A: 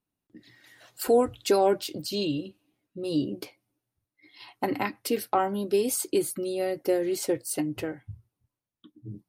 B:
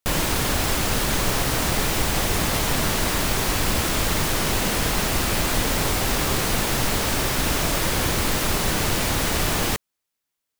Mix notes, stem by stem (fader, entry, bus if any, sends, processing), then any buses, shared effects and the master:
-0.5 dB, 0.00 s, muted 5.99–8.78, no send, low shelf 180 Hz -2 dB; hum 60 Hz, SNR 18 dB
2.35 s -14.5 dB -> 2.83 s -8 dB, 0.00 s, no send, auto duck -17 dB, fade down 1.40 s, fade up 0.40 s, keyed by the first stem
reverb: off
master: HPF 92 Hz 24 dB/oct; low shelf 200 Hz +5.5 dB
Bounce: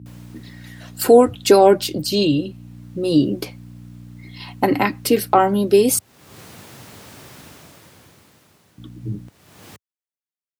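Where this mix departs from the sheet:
stem A -0.5 dB -> +10.0 dB; stem B -14.5 dB -> -25.5 dB

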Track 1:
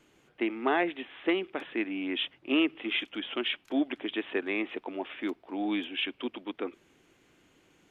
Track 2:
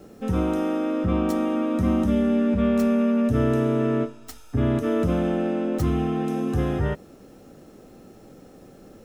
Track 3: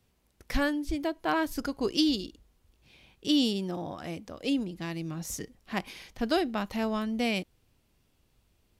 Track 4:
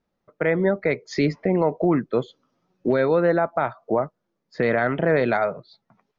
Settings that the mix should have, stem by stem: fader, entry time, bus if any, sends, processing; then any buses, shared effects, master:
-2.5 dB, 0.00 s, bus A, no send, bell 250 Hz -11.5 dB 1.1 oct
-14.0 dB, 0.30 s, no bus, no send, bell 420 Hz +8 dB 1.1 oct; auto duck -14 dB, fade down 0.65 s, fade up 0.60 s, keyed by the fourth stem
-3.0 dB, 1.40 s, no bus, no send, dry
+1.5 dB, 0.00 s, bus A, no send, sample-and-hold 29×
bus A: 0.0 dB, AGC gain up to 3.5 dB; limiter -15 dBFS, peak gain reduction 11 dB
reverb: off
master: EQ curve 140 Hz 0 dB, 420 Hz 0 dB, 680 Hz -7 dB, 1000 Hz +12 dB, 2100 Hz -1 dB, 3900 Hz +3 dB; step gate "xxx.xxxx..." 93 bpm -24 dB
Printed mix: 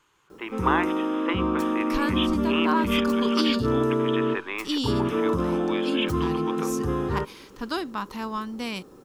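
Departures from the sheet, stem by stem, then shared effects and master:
stem 2 -14.0 dB -> -6.0 dB; stem 4: muted; master: missing step gate "xxx.xxxx..." 93 bpm -24 dB

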